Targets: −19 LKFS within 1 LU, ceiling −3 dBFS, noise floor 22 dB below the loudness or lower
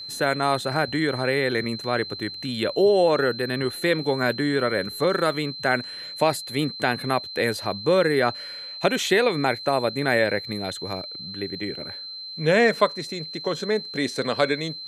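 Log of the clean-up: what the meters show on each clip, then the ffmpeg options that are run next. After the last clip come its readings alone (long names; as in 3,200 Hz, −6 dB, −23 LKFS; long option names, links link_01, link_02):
interfering tone 4,100 Hz; level of the tone −34 dBFS; integrated loudness −24.0 LKFS; sample peak −4.0 dBFS; target loudness −19.0 LKFS
→ -af "bandreject=frequency=4100:width=30"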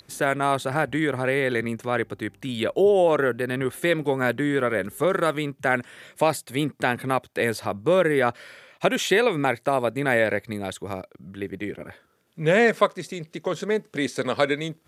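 interfering tone none found; integrated loudness −24.0 LKFS; sample peak −4.0 dBFS; target loudness −19.0 LKFS
→ -af "volume=5dB,alimiter=limit=-3dB:level=0:latency=1"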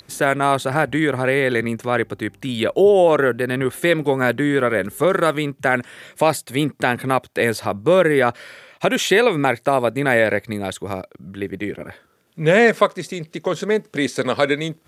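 integrated loudness −19.0 LKFS; sample peak −3.0 dBFS; background noise floor −56 dBFS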